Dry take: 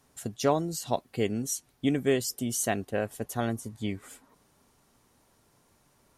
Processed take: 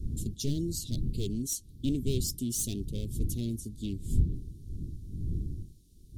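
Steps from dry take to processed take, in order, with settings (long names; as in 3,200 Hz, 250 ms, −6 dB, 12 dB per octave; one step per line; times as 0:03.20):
wavefolder on the positive side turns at −26 dBFS
wind on the microphone 100 Hz −34 dBFS
Chebyshev band-stop filter 360–3,600 Hz, order 3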